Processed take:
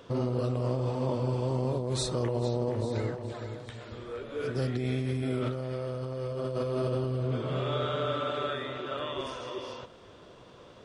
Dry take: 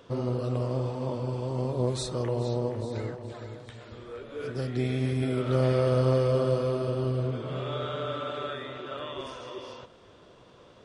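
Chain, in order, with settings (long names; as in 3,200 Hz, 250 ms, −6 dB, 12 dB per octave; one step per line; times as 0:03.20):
compressor whose output falls as the input rises −30 dBFS, ratio −1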